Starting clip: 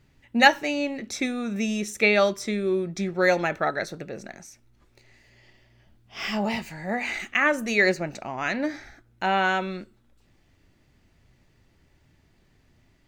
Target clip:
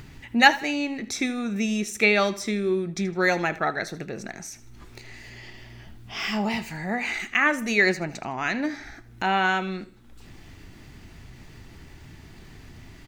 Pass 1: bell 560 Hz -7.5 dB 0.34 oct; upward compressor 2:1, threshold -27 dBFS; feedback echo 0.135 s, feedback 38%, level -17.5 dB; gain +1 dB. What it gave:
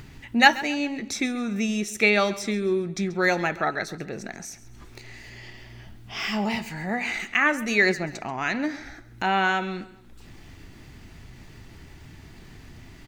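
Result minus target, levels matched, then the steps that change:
echo 56 ms late
change: feedback echo 79 ms, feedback 38%, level -17.5 dB

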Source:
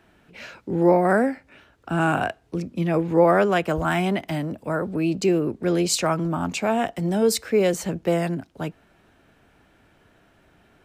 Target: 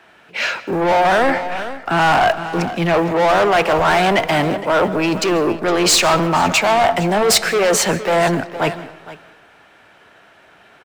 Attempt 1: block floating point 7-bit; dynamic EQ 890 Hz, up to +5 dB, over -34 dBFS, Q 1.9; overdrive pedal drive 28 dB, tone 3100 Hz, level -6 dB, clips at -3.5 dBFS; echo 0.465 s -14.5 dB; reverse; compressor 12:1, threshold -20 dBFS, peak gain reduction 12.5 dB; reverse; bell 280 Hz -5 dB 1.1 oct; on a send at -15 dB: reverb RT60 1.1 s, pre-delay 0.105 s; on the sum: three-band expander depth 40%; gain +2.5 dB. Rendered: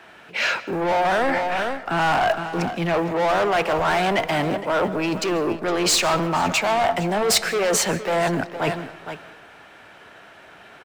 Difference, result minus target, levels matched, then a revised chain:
compressor: peak gain reduction +6 dB
block floating point 7-bit; dynamic EQ 890 Hz, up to +5 dB, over -34 dBFS, Q 1.9; overdrive pedal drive 28 dB, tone 3100 Hz, level -6 dB, clips at -3.5 dBFS; echo 0.465 s -14.5 dB; reverse; compressor 12:1, threshold -13.5 dBFS, peak gain reduction 6.5 dB; reverse; bell 280 Hz -5 dB 1.1 oct; on a send at -15 dB: reverb RT60 1.1 s, pre-delay 0.105 s; on the sum: three-band expander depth 40%; gain +2.5 dB

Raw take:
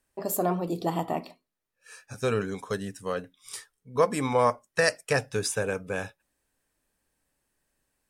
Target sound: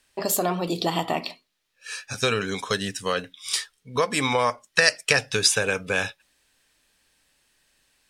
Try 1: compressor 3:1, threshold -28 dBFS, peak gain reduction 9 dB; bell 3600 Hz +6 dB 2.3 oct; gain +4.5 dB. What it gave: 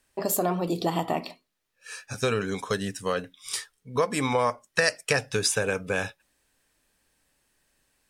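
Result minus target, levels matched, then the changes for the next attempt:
4000 Hz band -4.0 dB
change: bell 3600 Hz +14.5 dB 2.3 oct

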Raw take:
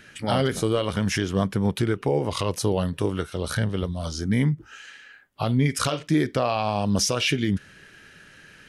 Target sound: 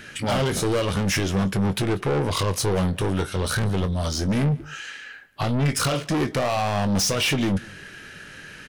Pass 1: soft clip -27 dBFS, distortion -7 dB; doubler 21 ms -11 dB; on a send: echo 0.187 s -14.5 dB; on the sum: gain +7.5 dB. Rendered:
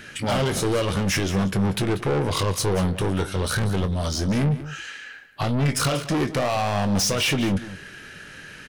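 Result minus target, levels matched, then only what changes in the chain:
echo-to-direct +8.5 dB
change: echo 0.187 s -23 dB

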